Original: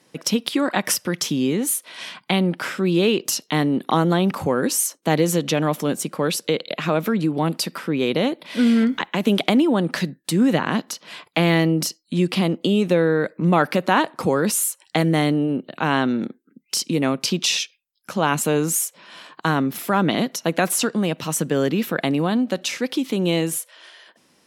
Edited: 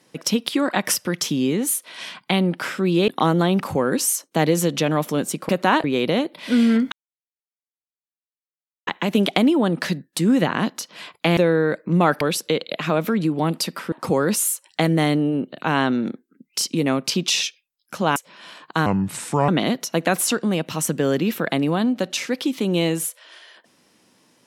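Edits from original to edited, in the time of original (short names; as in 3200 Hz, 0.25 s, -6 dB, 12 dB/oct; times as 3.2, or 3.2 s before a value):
3.08–3.79 cut
6.2–7.91 swap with 13.73–14.08
8.99 insert silence 1.95 s
11.49–12.89 cut
18.32–18.85 cut
19.55–20 speed 72%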